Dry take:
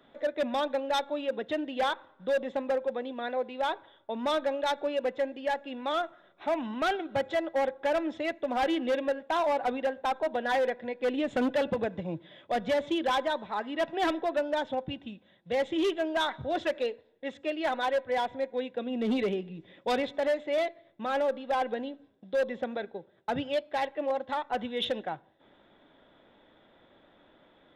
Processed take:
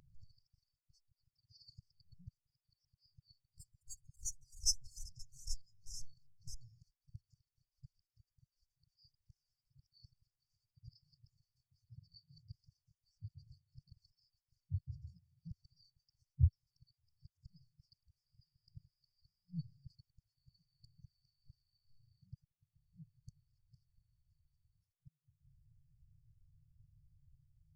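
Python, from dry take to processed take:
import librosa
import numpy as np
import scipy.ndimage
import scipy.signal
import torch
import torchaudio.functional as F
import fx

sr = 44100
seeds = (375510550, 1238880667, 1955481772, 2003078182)

y = fx.spec_box(x, sr, start_s=4.49, length_s=2.18, low_hz=250.0, high_hz=5000.0, gain_db=-21)
y = fx.gate_flip(y, sr, shuts_db=-26.0, range_db=-35)
y = fx.echo_pitch(y, sr, ms=100, semitones=2, count=3, db_per_echo=-6.0)
y = fx.brickwall_bandstop(y, sr, low_hz=150.0, high_hz=4400.0)
y = fx.spectral_expand(y, sr, expansion=1.5)
y = F.gain(torch.from_numpy(y), 17.5).numpy()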